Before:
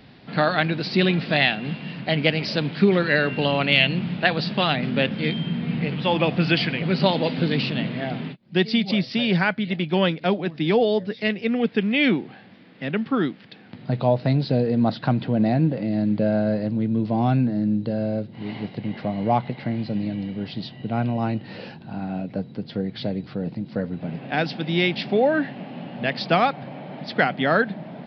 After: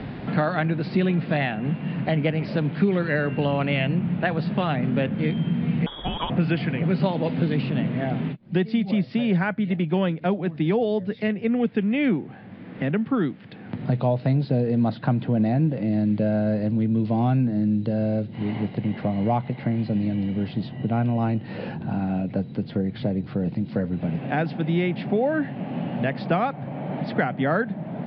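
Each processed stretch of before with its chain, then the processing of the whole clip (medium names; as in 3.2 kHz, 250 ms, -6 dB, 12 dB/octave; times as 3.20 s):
5.86–6.30 s: peaking EQ 770 Hz -14.5 dB 1.3 oct + frequency inversion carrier 3.5 kHz
whole clip: Bessel low-pass 1.7 kHz, order 2; bass shelf 110 Hz +10 dB; three bands compressed up and down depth 70%; trim -2.5 dB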